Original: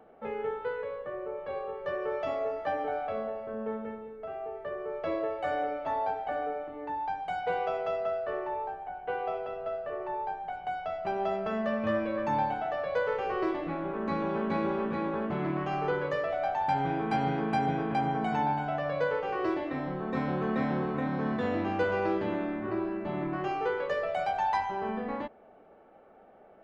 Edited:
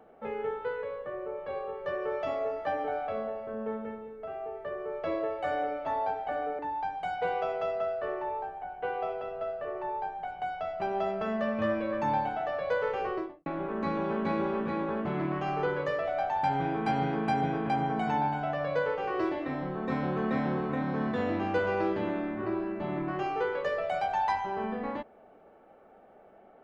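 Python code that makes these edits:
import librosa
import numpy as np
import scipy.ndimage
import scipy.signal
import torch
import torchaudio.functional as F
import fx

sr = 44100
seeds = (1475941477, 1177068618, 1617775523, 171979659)

y = fx.studio_fade_out(x, sr, start_s=13.25, length_s=0.46)
y = fx.edit(y, sr, fx.cut(start_s=6.59, length_s=0.25), tone=tone)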